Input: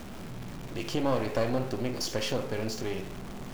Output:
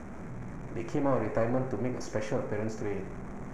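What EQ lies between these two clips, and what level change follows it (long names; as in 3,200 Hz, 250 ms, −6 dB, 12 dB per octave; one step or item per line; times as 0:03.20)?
high-frequency loss of the air 98 metres
flat-topped bell 3,700 Hz −16 dB 1.1 octaves
0.0 dB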